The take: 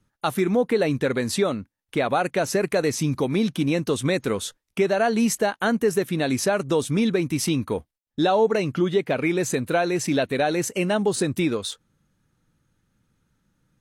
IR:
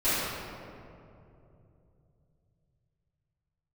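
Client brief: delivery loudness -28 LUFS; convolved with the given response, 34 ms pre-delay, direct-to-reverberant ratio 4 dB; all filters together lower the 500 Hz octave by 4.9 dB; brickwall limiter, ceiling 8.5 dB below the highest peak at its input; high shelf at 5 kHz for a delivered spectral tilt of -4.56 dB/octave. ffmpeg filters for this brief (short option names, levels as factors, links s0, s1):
-filter_complex "[0:a]equalizer=f=500:t=o:g=-6.5,highshelf=f=5000:g=5.5,alimiter=limit=0.168:level=0:latency=1,asplit=2[s0][s1];[1:a]atrim=start_sample=2205,adelay=34[s2];[s1][s2]afir=irnorm=-1:irlink=0,volume=0.126[s3];[s0][s3]amix=inputs=2:normalize=0,volume=0.668"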